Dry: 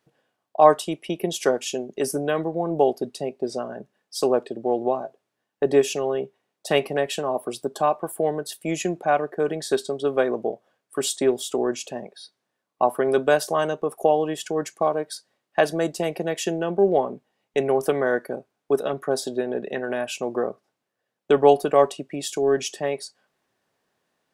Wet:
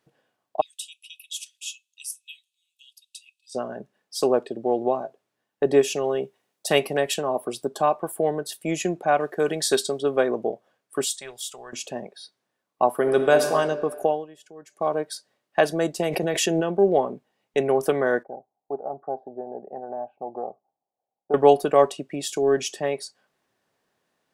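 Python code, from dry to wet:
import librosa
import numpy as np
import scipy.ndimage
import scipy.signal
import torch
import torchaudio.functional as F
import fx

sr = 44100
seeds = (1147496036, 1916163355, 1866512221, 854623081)

y = fx.cheby_ripple_highpass(x, sr, hz=2500.0, ripple_db=6, at=(0.61, 3.55))
y = fx.high_shelf(y, sr, hz=4700.0, db=8.5, at=(6.04, 7.14))
y = fx.high_shelf(y, sr, hz=2200.0, db=10.0, at=(9.2, 9.99))
y = fx.tone_stack(y, sr, knobs='10-0-10', at=(11.04, 11.73))
y = fx.reverb_throw(y, sr, start_s=12.92, length_s=0.56, rt60_s=1.8, drr_db=5.5)
y = fx.pre_swell(y, sr, db_per_s=26.0, at=(15.99, 16.6), fade=0.02)
y = fx.ladder_lowpass(y, sr, hz=830.0, resonance_pct=80, at=(18.23, 21.34))
y = fx.edit(y, sr, fx.fade_down_up(start_s=13.98, length_s=0.97, db=-19.0, fade_s=0.29), tone=tone)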